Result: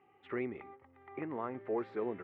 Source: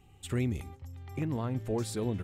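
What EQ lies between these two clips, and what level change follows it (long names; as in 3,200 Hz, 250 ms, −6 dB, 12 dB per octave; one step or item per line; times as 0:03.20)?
loudspeaker in its box 350–2,200 Hz, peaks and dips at 390 Hz +6 dB, 820 Hz +3 dB, 1,200 Hz +6 dB, 2,000 Hz +6 dB
−2.5 dB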